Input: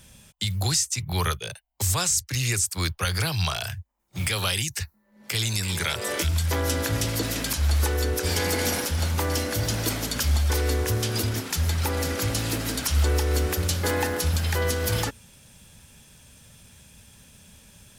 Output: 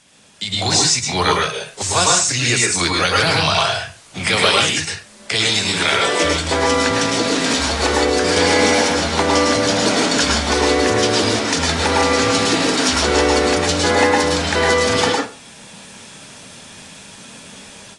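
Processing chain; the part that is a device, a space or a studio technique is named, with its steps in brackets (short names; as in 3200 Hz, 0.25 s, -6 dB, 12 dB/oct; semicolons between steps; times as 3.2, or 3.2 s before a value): filmed off a television (BPF 220–6700 Hz; bell 680 Hz +6 dB 0.25 oct; reverb RT60 0.35 s, pre-delay 0.101 s, DRR -1 dB; white noise; AGC gain up to 12 dB; gain -1 dB; AAC 32 kbps 22050 Hz)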